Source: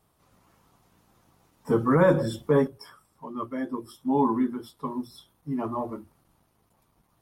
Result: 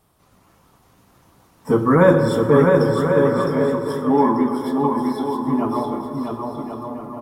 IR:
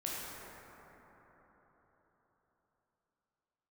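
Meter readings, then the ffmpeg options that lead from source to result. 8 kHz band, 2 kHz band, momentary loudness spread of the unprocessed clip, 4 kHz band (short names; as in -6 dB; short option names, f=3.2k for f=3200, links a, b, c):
n/a, +9.5 dB, 18 LU, +8.5 dB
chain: -filter_complex "[0:a]aecho=1:1:660|1089|1368|1549|1667:0.631|0.398|0.251|0.158|0.1,asplit=2[a][b];[1:a]atrim=start_sample=2205[c];[b][c]afir=irnorm=-1:irlink=0,volume=-7dB[d];[a][d]amix=inputs=2:normalize=0,volume=4dB"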